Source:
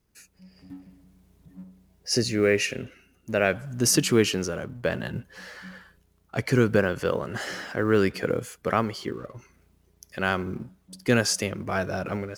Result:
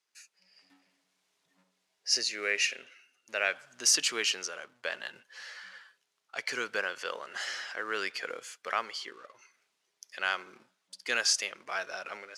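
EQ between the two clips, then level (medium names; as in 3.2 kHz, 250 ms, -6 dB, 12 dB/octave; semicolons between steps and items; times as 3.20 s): band-pass 560–6500 Hz; tilt shelf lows -7.5 dB, about 1.2 kHz; -5.0 dB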